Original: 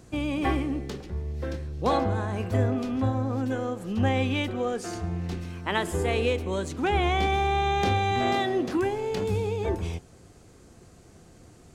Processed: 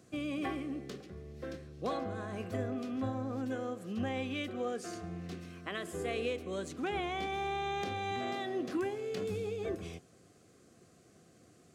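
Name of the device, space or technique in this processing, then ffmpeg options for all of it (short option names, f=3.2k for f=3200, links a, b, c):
PA system with an anti-feedback notch: -af "highpass=140,asuperstop=centerf=900:order=4:qfactor=4.8,alimiter=limit=-18dB:level=0:latency=1:release=390,volume=-7.5dB"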